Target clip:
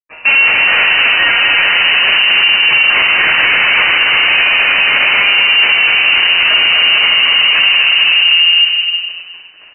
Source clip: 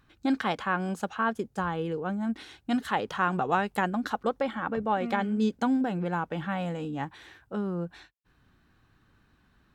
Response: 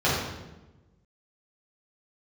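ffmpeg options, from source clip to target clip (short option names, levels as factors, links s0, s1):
-filter_complex "[0:a]aeval=exprs='if(lt(val(0),0),0.708*val(0),val(0))':c=same,asplit=3[s0][s1][s2];[s0]afade=t=out:st=1.99:d=0.02[s3];[s1]acontrast=56,afade=t=in:st=1.99:d=0.02,afade=t=out:st=4.28:d=0.02[s4];[s2]afade=t=in:st=4.28:d=0.02[s5];[s3][s4][s5]amix=inputs=3:normalize=0,acrusher=bits=6:dc=4:mix=0:aa=0.000001,lowshelf=f=130:t=q:w=1.5:g=-7.5[s6];[1:a]atrim=start_sample=2205,asetrate=34398,aresample=44100[s7];[s6][s7]afir=irnorm=-1:irlink=0,adynamicequalizer=threshold=0.178:dfrequency=180:dqfactor=1.3:tfrequency=180:tqfactor=1.3:attack=5:release=100:ratio=0.375:range=2:mode=cutabove:tftype=bell,acompressor=threshold=0.355:ratio=6,aeval=exprs='(tanh(11.2*val(0)+0.15)-tanh(0.15))/11.2':c=same,aecho=1:1:250|450|610|738|840.4:0.631|0.398|0.251|0.158|0.1,lowpass=f=2600:t=q:w=0.5098,lowpass=f=2600:t=q:w=0.6013,lowpass=f=2600:t=q:w=0.9,lowpass=f=2600:t=q:w=2.563,afreqshift=-3000,alimiter=level_in=7.08:limit=0.891:release=50:level=0:latency=1,volume=0.891"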